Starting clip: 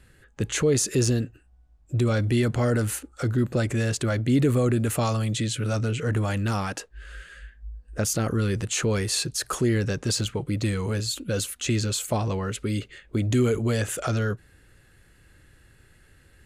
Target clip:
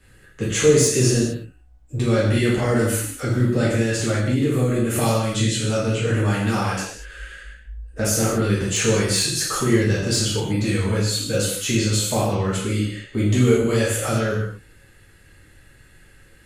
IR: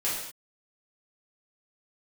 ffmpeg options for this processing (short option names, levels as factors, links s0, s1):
-filter_complex "[1:a]atrim=start_sample=2205[s0];[0:a][s0]afir=irnorm=-1:irlink=0,acrossover=split=260|2200[s1][s2][s3];[s3]aeval=exprs='clip(val(0),-1,0.211)':c=same[s4];[s1][s2][s4]amix=inputs=3:normalize=0,asettb=1/sr,asplit=3[s5][s6][s7];[s5]atrim=end=3.814[s8];[s6]atrim=start=3.81:end=4.96,asetpts=PTS-STARTPTS,afade=t=in:d=0.004:c=qsin,afade=t=out:st=1.146:d=0.004:c=qsin,acompressor=threshold=0.178:ratio=3[s9];[s7]atrim=start=4.956[s10];[s8][s9]acrossfade=d=0.004:c1=hsin:c2=qsin[s11];[s11][s10]acrossfade=d=0.004:c1=qsin:c2=hsin,volume=0.794"